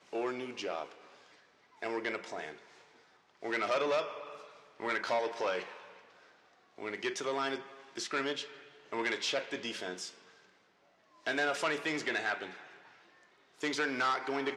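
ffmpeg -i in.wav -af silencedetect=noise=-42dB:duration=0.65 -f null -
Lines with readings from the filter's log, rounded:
silence_start: 0.92
silence_end: 1.83 | silence_duration: 0.91
silence_start: 2.53
silence_end: 3.43 | silence_duration: 0.90
silence_start: 5.84
silence_end: 6.78 | silence_duration: 0.94
silence_start: 10.09
silence_end: 11.26 | silence_duration: 1.17
silence_start: 12.62
silence_end: 13.61 | silence_duration: 0.99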